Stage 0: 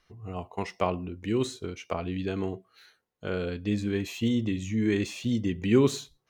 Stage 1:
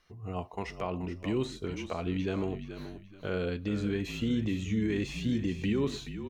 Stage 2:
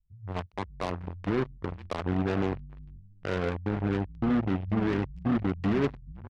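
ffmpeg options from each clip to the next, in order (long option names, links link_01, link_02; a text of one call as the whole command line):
ffmpeg -i in.wav -filter_complex "[0:a]acrossover=split=4200[link_01][link_02];[link_02]acompressor=threshold=-50dB:ratio=4:attack=1:release=60[link_03];[link_01][link_03]amix=inputs=2:normalize=0,alimiter=limit=-21.5dB:level=0:latency=1:release=100,asplit=2[link_04][link_05];[link_05]asplit=3[link_06][link_07][link_08];[link_06]adelay=428,afreqshift=-43,volume=-10dB[link_09];[link_07]adelay=856,afreqshift=-86,volume=-20.2dB[link_10];[link_08]adelay=1284,afreqshift=-129,volume=-30.3dB[link_11];[link_09][link_10][link_11]amix=inputs=3:normalize=0[link_12];[link_04][link_12]amix=inputs=2:normalize=0" out.wav
ffmpeg -i in.wav -filter_complex "[0:a]lowpass=frequency=1800:width=0.5412,lowpass=frequency=1800:width=1.3066,asplit=2[link_01][link_02];[link_02]adelay=21,volume=-12dB[link_03];[link_01][link_03]amix=inputs=2:normalize=0,acrossover=split=140[link_04][link_05];[link_05]acrusher=bits=4:mix=0:aa=0.5[link_06];[link_04][link_06]amix=inputs=2:normalize=0,volume=2dB" out.wav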